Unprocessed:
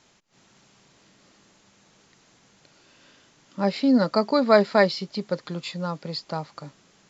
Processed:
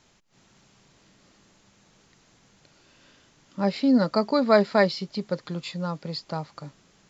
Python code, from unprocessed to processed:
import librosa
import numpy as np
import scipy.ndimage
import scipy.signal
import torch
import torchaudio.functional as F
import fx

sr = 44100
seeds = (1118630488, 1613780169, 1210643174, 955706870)

y = fx.low_shelf(x, sr, hz=95.0, db=10.5)
y = y * librosa.db_to_amplitude(-2.0)